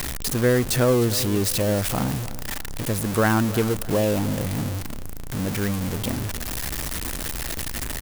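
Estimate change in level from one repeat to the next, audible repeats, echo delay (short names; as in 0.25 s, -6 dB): -9.0 dB, 2, 0.308 s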